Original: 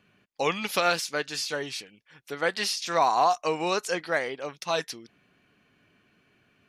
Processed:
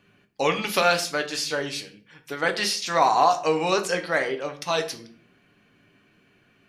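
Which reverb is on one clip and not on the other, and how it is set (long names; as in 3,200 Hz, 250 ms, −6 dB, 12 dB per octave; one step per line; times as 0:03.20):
rectangular room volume 40 cubic metres, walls mixed, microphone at 0.33 metres
level +2.5 dB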